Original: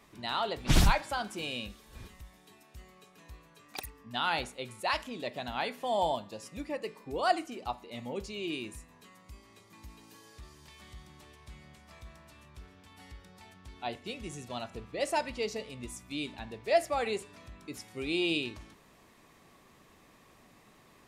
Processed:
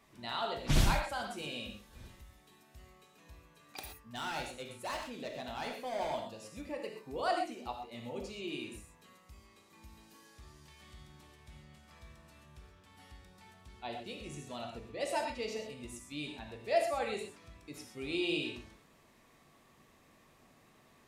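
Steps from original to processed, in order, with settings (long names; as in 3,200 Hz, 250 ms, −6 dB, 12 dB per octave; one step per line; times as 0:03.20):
0:03.98–0:06.14: hard clipping −30.5 dBFS, distortion −15 dB
reverb whose tail is shaped and stops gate 150 ms flat, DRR 2 dB
level −6 dB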